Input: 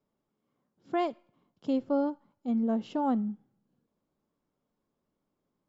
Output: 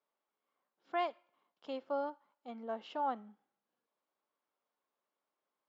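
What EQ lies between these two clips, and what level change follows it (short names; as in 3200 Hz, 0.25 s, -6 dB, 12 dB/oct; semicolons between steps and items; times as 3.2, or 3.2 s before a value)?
BPF 760–3800 Hz; 0.0 dB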